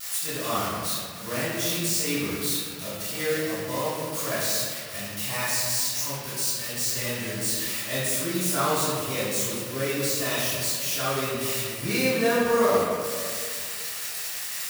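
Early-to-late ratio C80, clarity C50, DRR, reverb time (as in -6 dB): 0.0 dB, -3.0 dB, -13.5 dB, 2.0 s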